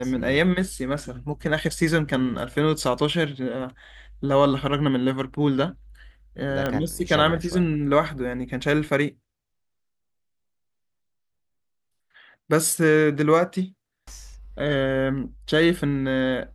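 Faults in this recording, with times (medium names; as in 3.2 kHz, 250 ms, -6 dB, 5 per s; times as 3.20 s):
6.66 s: pop -12 dBFS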